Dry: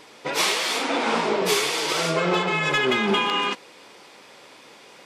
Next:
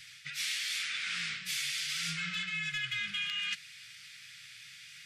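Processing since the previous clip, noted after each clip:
inverse Chebyshev band-stop filter 240–1,000 Hz, stop band 40 dB
reversed playback
downward compressor, threshold −33 dBFS, peak gain reduction 13 dB
reversed playback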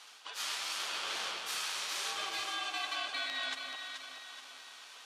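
delay that swaps between a low-pass and a high-pass 215 ms, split 2,000 Hz, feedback 68%, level −3 dB
ring modulation 960 Hz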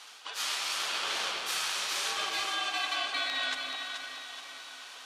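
convolution reverb RT60 4.4 s, pre-delay 9 ms, DRR 8 dB
level +4.5 dB

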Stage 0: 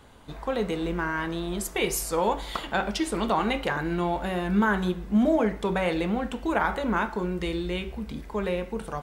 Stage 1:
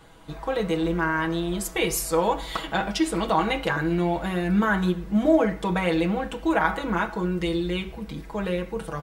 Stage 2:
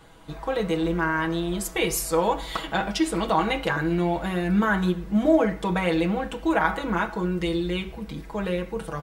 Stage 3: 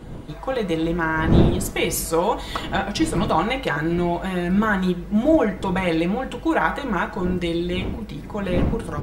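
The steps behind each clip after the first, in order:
comb filter 6.2 ms, depth 79%
no processing that can be heard
wind on the microphone 240 Hz −30 dBFS; level +2 dB

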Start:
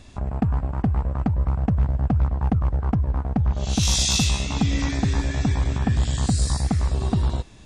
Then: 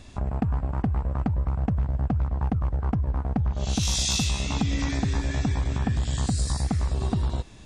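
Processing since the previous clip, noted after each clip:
downward compressor, threshold −21 dBFS, peak gain reduction 6 dB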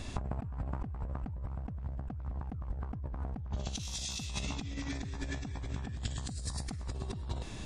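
compressor whose output falls as the input rises −34 dBFS, ratio −1
level −4 dB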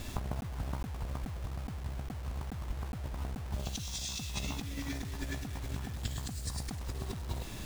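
bit-depth reduction 8 bits, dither none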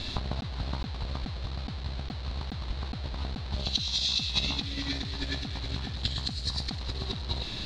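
low-pass with resonance 4,100 Hz, resonance Q 6.4
level +3.5 dB

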